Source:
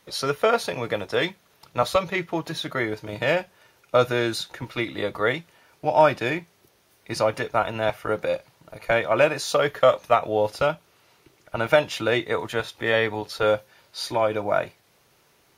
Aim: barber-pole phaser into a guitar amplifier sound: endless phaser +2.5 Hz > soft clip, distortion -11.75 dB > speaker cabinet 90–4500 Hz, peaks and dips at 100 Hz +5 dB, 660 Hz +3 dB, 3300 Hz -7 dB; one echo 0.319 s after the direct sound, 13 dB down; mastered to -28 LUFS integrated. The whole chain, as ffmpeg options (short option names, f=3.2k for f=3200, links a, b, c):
-filter_complex "[0:a]aecho=1:1:319:0.224,asplit=2[a][b];[b]afreqshift=2.5[c];[a][c]amix=inputs=2:normalize=1,asoftclip=threshold=-18.5dB,highpass=90,equalizer=f=100:t=q:w=4:g=5,equalizer=f=660:t=q:w=4:g=3,equalizer=f=3.3k:t=q:w=4:g=-7,lowpass=f=4.5k:w=0.5412,lowpass=f=4.5k:w=1.3066,volume=1dB"